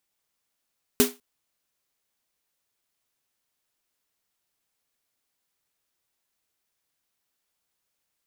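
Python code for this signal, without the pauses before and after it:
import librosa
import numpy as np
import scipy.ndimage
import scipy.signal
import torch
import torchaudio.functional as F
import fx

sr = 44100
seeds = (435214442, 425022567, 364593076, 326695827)

y = fx.drum_snare(sr, seeds[0], length_s=0.2, hz=250.0, second_hz=410.0, noise_db=-2.0, noise_from_hz=590.0, decay_s=0.22, noise_decay_s=0.24)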